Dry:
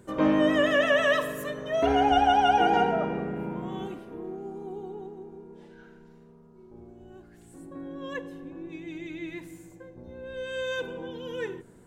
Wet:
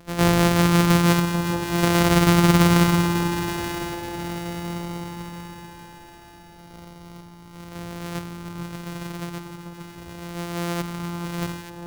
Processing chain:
samples sorted by size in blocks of 256 samples
delay that swaps between a low-pass and a high-pass 440 ms, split 1,200 Hz, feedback 66%, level −6 dB
level +4 dB

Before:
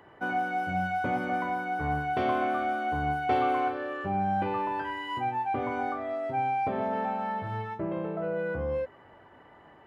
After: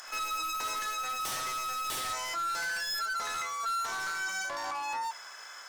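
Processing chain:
high-pass filter 710 Hz 12 dB per octave
high shelf with overshoot 2,700 Hz +13 dB, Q 3
notch filter 1,600 Hz, Q 22
in parallel at −1.5 dB: compressor whose output falls as the input rises −45 dBFS, ratio −1
on the sum: wave folding −29.5 dBFS
echo ahead of the sound 98 ms −14 dB
on a send at −21 dB: convolution reverb, pre-delay 4 ms
on the sum: wrong playback speed 45 rpm record played at 78 rpm

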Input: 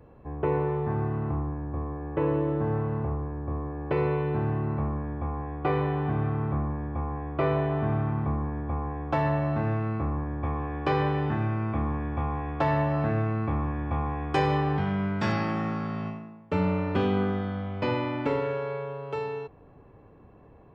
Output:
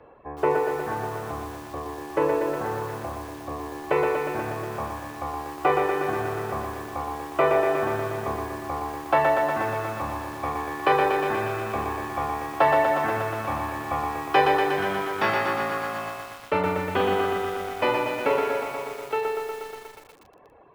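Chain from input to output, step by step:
three-way crossover with the lows and the highs turned down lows −17 dB, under 390 Hz, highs −21 dB, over 4,400 Hz
reverb reduction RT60 1.1 s
feedback echo at a low word length 120 ms, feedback 80%, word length 9 bits, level −3.5 dB
level +8.5 dB

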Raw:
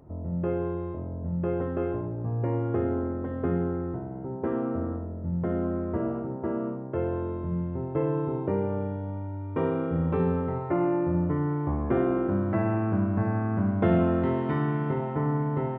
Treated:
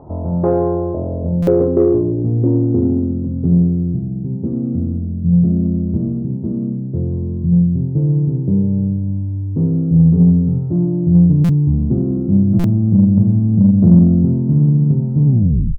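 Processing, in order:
turntable brake at the end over 0.52 s
parametric band 2,500 Hz −6.5 dB 0.88 octaves
low-pass filter sweep 890 Hz → 180 Hz, 0:00.41–0:03.34
in parallel at −4 dB: soft clipping −19 dBFS, distortion −15 dB
on the sum: buffer that repeats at 0:01.42/0:11.44/0:12.59, samples 256, times 8
level +7.5 dB

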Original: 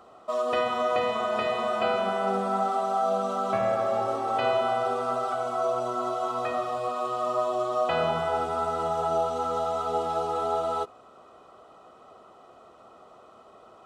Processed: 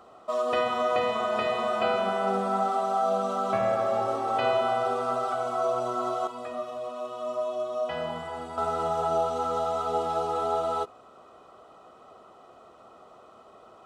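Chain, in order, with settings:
0:06.27–0:08.58: stiff-string resonator 71 Hz, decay 0.21 s, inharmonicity 0.03

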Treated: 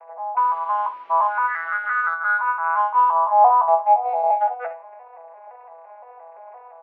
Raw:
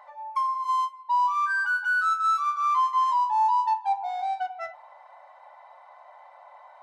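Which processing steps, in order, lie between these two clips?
vocoder with an arpeggio as carrier major triad, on E3, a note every 172 ms
parametric band 710 Hz +6.5 dB 0.71 octaves
0:00.39–0:02.09: bit-depth reduction 8 bits, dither triangular
loudspeaker in its box 500–2,100 Hz, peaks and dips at 750 Hz −6 dB, 1,200 Hz −9 dB, 1,800 Hz −6 dB
ambience of single reflections 18 ms −7 dB, 64 ms −12 dB
level +8 dB

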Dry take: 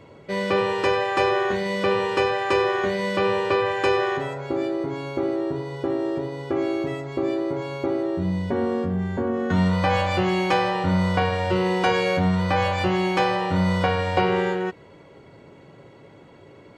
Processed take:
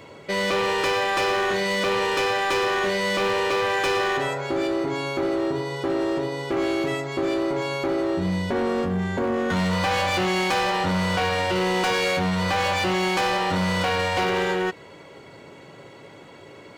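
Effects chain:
spectral tilt +2 dB per octave
in parallel at +2.5 dB: brickwall limiter −20.5 dBFS, peak gain reduction 11.5 dB
on the sum: gain into a clipping stage and back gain 17.5 dB
level −2 dB

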